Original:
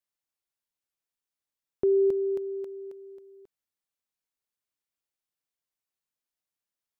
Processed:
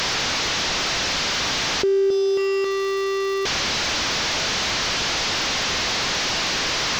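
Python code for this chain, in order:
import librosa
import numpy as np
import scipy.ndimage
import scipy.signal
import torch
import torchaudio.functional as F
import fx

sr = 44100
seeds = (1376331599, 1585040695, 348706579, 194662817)

y = fx.delta_mod(x, sr, bps=32000, step_db=-32.0)
y = fx.dmg_crackle(y, sr, seeds[0], per_s=520.0, level_db=-50.0)
y = fx.env_flatten(y, sr, amount_pct=70)
y = y * librosa.db_to_amplitude(3.5)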